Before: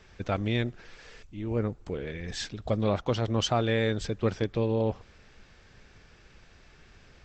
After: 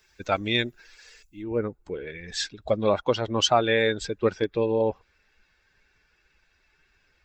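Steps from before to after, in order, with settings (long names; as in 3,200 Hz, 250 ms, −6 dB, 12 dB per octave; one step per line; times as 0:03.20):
spectral dynamics exaggerated over time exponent 1.5
bass and treble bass −13 dB, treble +12 dB, from 0:01.42 treble −1 dB
level +9 dB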